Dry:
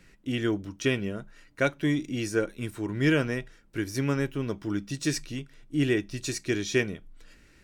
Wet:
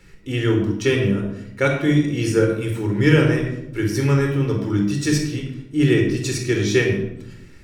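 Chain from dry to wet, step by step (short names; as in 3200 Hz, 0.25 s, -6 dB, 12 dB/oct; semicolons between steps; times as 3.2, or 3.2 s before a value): shoebox room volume 2400 m³, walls furnished, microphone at 4.2 m; gain +3.5 dB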